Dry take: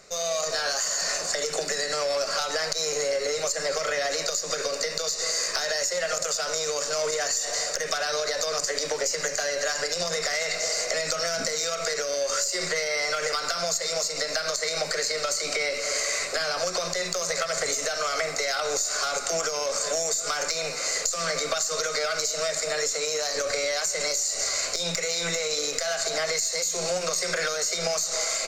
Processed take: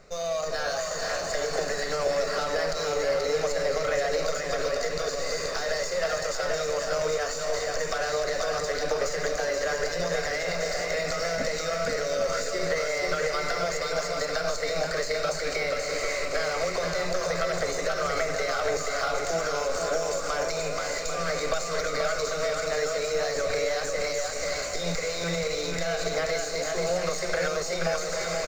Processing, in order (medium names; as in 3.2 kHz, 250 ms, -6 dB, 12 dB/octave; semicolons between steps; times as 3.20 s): low-pass 1.8 kHz 6 dB/octave; bass shelf 110 Hz +11.5 dB; on a send: bouncing-ball echo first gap 480 ms, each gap 0.65×, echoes 5; on the sum: IMA ADPCM 176 kbps 44.1 kHz